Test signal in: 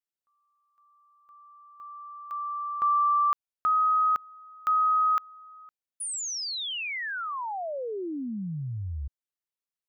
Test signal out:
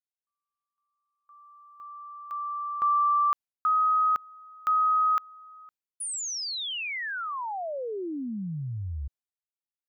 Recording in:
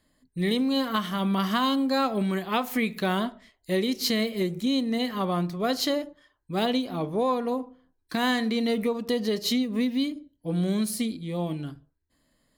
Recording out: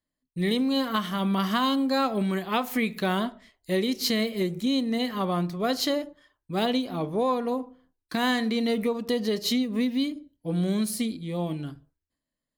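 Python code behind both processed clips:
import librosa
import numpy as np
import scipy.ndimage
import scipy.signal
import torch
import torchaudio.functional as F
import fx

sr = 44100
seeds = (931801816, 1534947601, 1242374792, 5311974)

y = fx.gate_hold(x, sr, open_db=-51.0, close_db=-57.0, hold_ms=37.0, range_db=-19, attack_ms=1.8, release_ms=342.0)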